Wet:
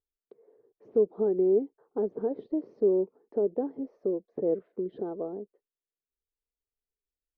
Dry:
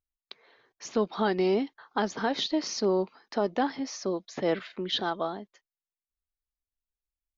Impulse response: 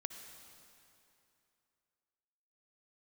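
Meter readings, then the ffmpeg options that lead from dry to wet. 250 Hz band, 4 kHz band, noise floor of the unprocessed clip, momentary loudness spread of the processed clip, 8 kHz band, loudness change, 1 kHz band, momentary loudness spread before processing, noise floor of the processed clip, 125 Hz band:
-1.5 dB, under -40 dB, under -85 dBFS, 11 LU, n/a, 0.0 dB, -15.0 dB, 7 LU, under -85 dBFS, -5.5 dB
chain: -filter_complex "[0:a]lowpass=f=440:t=q:w=4.9,asplit=2[a][b];[b]acompressor=threshold=-29dB:ratio=6,volume=-2.5dB[c];[a][c]amix=inputs=2:normalize=0,volume=-9dB"

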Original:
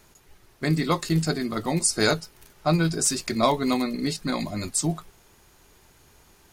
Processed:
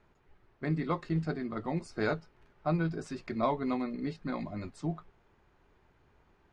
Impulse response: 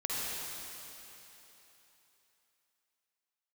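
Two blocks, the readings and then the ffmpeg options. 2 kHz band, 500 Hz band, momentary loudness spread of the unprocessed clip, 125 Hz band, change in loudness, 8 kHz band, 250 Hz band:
-10.0 dB, -8.0 dB, 8 LU, -8.0 dB, -9.5 dB, -32.5 dB, -8.0 dB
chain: -af "lowpass=2k,volume=-8dB"

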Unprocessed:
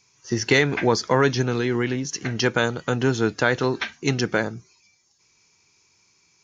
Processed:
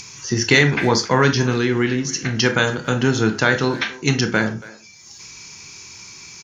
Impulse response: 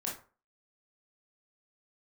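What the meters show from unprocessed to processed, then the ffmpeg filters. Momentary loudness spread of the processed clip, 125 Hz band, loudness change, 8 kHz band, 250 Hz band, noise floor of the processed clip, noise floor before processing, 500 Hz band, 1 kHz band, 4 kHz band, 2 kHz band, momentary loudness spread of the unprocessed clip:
21 LU, +5.0 dB, +4.0 dB, n/a, +4.5 dB, -43 dBFS, -63 dBFS, +1.5 dB, +3.5 dB, +6.0 dB, +5.5 dB, 8 LU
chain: -filter_complex "[0:a]asplit=2[a][b];[1:a]atrim=start_sample=2205,afade=t=out:st=0.18:d=0.01,atrim=end_sample=8379[c];[b][c]afir=irnorm=-1:irlink=0,volume=-3.5dB[d];[a][d]amix=inputs=2:normalize=0,acompressor=mode=upward:threshold=-26dB:ratio=2.5,equalizer=f=570:w=0.69:g=-6,asplit=2[e][f];[f]adelay=280,highpass=300,lowpass=3.4k,asoftclip=type=hard:threshold=-13.5dB,volume=-18dB[g];[e][g]amix=inputs=2:normalize=0,volume=2.5dB"

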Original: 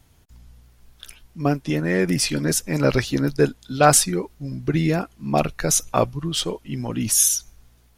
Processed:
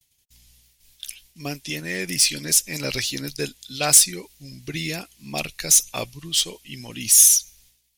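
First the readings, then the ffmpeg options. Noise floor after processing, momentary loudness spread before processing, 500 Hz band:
-66 dBFS, 10 LU, -11.0 dB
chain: -af "agate=range=-33dB:threshold=-47dB:ratio=3:detection=peak,aexciter=amount=3.5:drive=9.6:freq=2k,volume=-11dB"

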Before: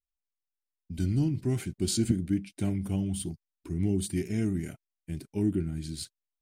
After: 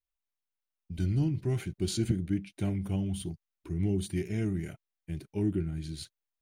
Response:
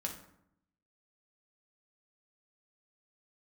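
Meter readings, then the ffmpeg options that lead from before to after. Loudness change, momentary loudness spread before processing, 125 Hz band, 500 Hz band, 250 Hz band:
-1.5 dB, 13 LU, -0.5 dB, -1.0 dB, -3.0 dB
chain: -af "equalizer=f=250:t=o:w=0.33:g=-10,equalizer=f=5k:t=o:w=0.33:g=-6,equalizer=f=8k:t=o:w=0.33:g=-11,equalizer=f=12.5k:t=o:w=0.33:g=-9"

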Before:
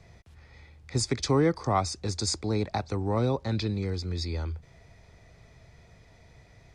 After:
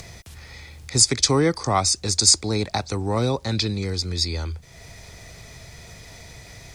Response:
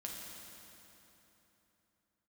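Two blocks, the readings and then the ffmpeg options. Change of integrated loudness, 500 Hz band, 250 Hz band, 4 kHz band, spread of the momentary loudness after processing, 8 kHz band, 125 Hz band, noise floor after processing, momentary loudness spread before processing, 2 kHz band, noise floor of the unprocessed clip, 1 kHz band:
+8.5 dB, +4.0 dB, +3.5 dB, +13.5 dB, 10 LU, +16.5 dB, +3.5 dB, -46 dBFS, 9 LU, +8.0 dB, -57 dBFS, +5.0 dB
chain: -af "crystalizer=i=4:c=0,acompressor=mode=upward:threshold=-37dB:ratio=2.5,volume=3.5dB"

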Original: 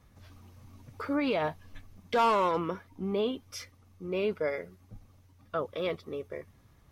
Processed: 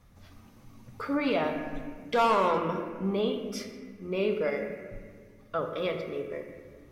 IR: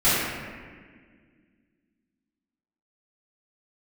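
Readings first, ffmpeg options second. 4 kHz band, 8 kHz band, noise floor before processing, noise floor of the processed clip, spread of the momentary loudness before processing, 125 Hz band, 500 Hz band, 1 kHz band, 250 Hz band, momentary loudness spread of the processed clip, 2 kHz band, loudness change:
+1.5 dB, +1.0 dB, -61 dBFS, -55 dBFS, 17 LU, +2.5 dB, +2.0 dB, +1.5 dB, +2.5 dB, 17 LU, +2.5 dB, +1.5 dB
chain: -filter_complex "[0:a]asplit=2[a][b];[1:a]atrim=start_sample=2205[c];[b][c]afir=irnorm=-1:irlink=0,volume=-22dB[d];[a][d]amix=inputs=2:normalize=0"

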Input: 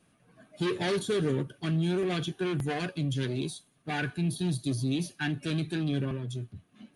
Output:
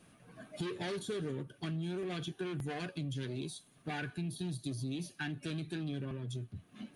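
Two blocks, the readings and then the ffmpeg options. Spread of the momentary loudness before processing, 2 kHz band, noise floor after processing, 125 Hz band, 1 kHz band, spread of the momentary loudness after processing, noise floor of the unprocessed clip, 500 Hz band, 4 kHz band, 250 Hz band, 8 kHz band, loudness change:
7 LU, -8.0 dB, -65 dBFS, -8.5 dB, -8.0 dB, 6 LU, -67 dBFS, -9.0 dB, -8.0 dB, -8.5 dB, -7.0 dB, -9.0 dB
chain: -af "acompressor=threshold=-45dB:ratio=3,volume=4.5dB"

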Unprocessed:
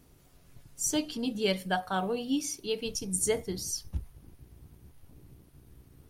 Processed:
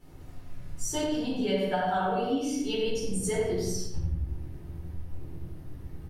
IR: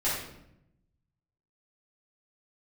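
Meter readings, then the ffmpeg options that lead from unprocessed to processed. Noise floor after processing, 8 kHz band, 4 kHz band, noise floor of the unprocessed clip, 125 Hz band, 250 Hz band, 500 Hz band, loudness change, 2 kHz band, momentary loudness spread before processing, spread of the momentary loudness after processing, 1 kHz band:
-45 dBFS, -4.0 dB, -1.0 dB, -59 dBFS, +6.5 dB, +3.0 dB, +3.5 dB, +1.5 dB, +0.5 dB, 5 LU, 17 LU, +5.0 dB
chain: -filter_complex "[0:a]highshelf=f=4.2k:g=-9[a];[1:a]atrim=start_sample=2205,afade=t=out:st=0.35:d=0.01,atrim=end_sample=15876[b];[a][b]afir=irnorm=-1:irlink=0,acompressor=threshold=-29dB:ratio=3,asplit=2[c][d];[d]adelay=88,lowpass=f=2.4k:p=1,volume=-4dB,asplit=2[e][f];[f]adelay=88,lowpass=f=2.4k:p=1,volume=0.47,asplit=2[g][h];[h]adelay=88,lowpass=f=2.4k:p=1,volume=0.47,asplit=2[i][j];[j]adelay=88,lowpass=f=2.4k:p=1,volume=0.47,asplit=2[k][l];[l]adelay=88,lowpass=f=2.4k:p=1,volume=0.47,asplit=2[m][n];[n]adelay=88,lowpass=f=2.4k:p=1,volume=0.47[o];[c][e][g][i][k][m][o]amix=inputs=7:normalize=0"

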